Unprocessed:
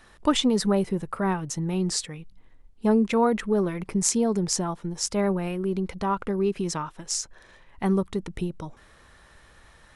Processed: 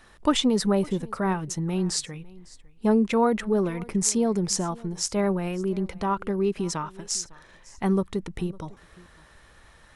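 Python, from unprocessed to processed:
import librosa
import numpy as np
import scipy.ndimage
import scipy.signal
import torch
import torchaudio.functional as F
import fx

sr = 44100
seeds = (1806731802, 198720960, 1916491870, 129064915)

y = x + 10.0 ** (-22.5 / 20.0) * np.pad(x, (int(554 * sr / 1000.0), 0))[:len(x)]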